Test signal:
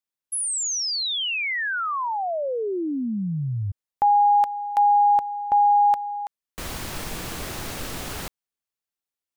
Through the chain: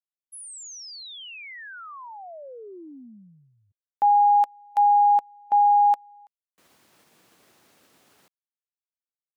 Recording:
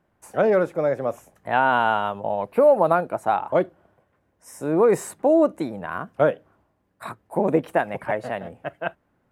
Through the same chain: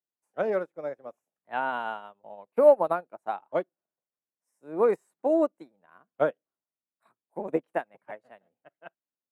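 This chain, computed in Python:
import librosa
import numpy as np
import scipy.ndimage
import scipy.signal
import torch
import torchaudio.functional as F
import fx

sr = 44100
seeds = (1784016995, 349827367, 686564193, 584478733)

y = scipy.signal.sosfilt(scipy.signal.butter(2, 200.0, 'highpass', fs=sr, output='sos'), x)
y = fx.upward_expand(y, sr, threshold_db=-35.0, expansion=2.5)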